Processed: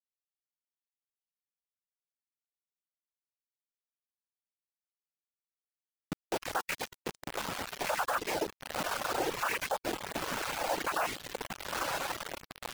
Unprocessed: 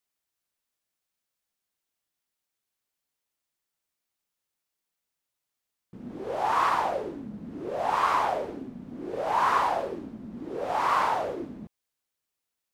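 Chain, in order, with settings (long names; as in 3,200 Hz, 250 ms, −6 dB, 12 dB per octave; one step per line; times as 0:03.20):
time-frequency cells dropped at random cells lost 67%
hollow resonant body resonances 220/490/770/3,200 Hz, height 13 dB, ringing for 60 ms
flanger 0.53 Hz, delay 5.3 ms, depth 7.5 ms, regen +21%
octave-band graphic EQ 250/2,000/4,000 Hz −6/+12/−8 dB
feedback delay with all-pass diffusion 995 ms, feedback 40%, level −6.5 dB
dynamic equaliser 280 Hz, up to −5 dB, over −52 dBFS, Q 2.4
in parallel at −1 dB: downward compressor 4 to 1, threshold −36 dBFS, peak gain reduction 13.5 dB
on the sum: cochlear-implant simulation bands 8
on a send at −14.5 dB: convolution reverb RT60 1.5 s, pre-delay 136 ms
on the sum: bit reduction 5 bits
reverb reduction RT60 0.69 s
brickwall limiter −19 dBFS, peak gain reduction 8.5 dB
level −3 dB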